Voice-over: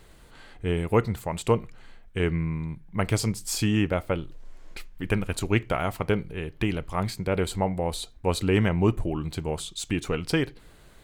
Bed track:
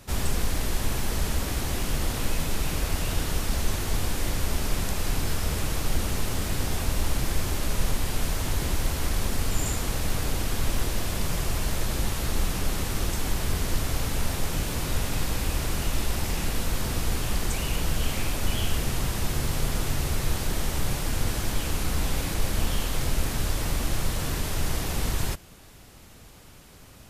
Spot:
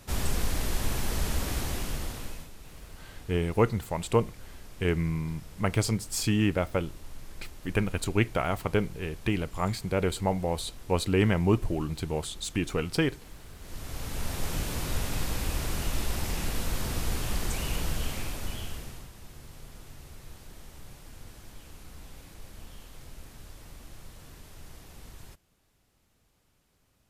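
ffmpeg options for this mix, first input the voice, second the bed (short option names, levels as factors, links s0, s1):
-filter_complex "[0:a]adelay=2650,volume=0.841[s0];[1:a]volume=5.62,afade=t=out:st=1.57:d=0.94:silence=0.11885,afade=t=in:st=13.59:d=0.92:silence=0.133352,afade=t=out:st=17.75:d=1.35:silence=0.141254[s1];[s0][s1]amix=inputs=2:normalize=0"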